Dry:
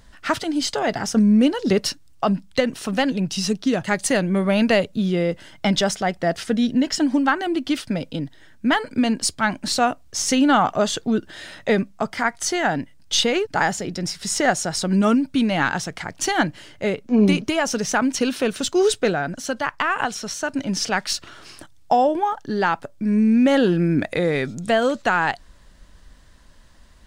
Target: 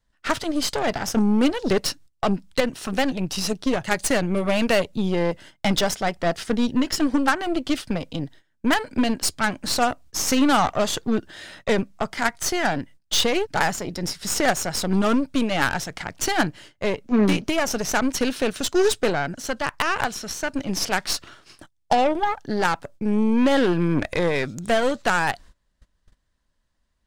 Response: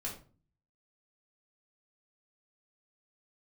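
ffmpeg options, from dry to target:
-af "adynamicequalizer=threshold=0.02:dfrequency=210:dqfactor=4.1:tfrequency=210:tqfactor=4.1:attack=5:release=100:ratio=0.375:range=3:mode=cutabove:tftype=bell,agate=range=-20dB:threshold=-41dB:ratio=16:detection=peak,aeval=exprs='0.531*(cos(1*acos(clip(val(0)/0.531,-1,1)))-cos(1*PI/2))+0.106*(cos(4*acos(clip(val(0)/0.531,-1,1)))-cos(4*PI/2))+0.168*(cos(6*acos(clip(val(0)/0.531,-1,1)))-cos(6*PI/2))+0.133*(cos(8*acos(clip(val(0)/0.531,-1,1)))-cos(8*PI/2))':c=same,volume=-2dB"

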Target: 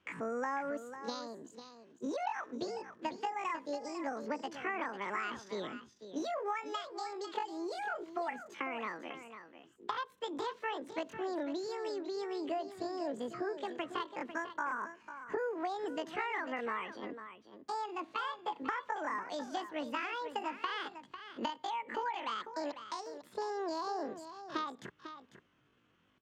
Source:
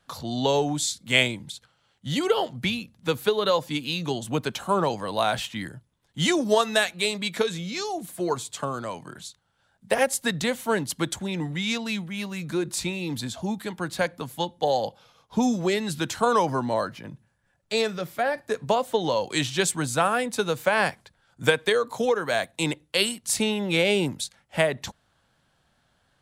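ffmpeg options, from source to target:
-filter_complex "[0:a]asetrate=85689,aresample=44100,atempo=0.514651,highpass=67,acompressor=threshold=-31dB:ratio=6,lowpass=2.7k,asplit=2[a][b];[b]aecho=0:1:498:0.282[c];[a][c]amix=inputs=2:normalize=0,volume=-3dB"

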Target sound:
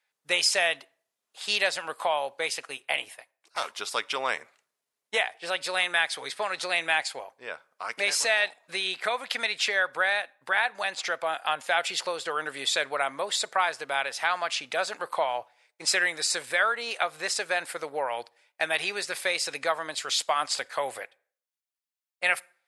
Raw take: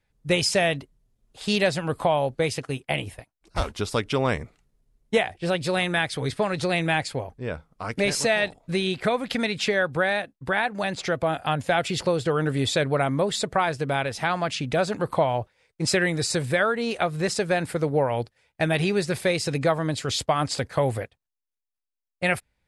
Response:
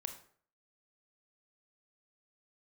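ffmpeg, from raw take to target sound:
-filter_complex "[0:a]highpass=890,asplit=2[a][b];[1:a]atrim=start_sample=2205[c];[b][c]afir=irnorm=-1:irlink=0,volume=-14.5dB[d];[a][d]amix=inputs=2:normalize=0"

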